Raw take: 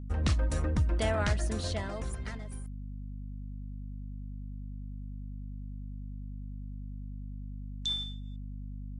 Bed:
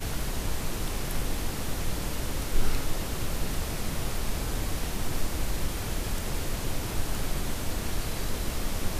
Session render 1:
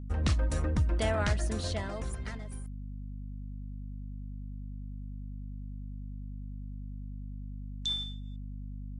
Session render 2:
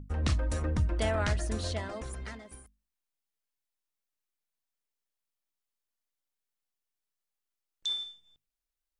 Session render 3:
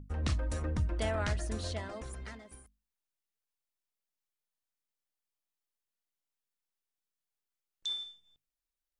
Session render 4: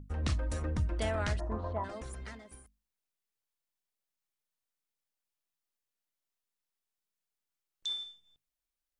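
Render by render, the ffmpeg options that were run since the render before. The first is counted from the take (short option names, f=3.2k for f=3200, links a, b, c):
-af anull
-af "bandreject=f=50:t=h:w=6,bandreject=f=100:t=h:w=6,bandreject=f=150:t=h:w=6,bandreject=f=200:t=h:w=6,bandreject=f=250:t=h:w=6"
-af "volume=-3.5dB"
-filter_complex "[0:a]asplit=3[a][b][c];[a]afade=t=out:st=1.39:d=0.02[d];[b]lowpass=f=1k:t=q:w=4.7,afade=t=in:st=1.39:d=0.02,afade=t=out:st=1.83:d=0.02[e];[c]afade=t=in:st=1.83:d=0.02[f];[d][e][f]amix=inputs=3:normalize=0"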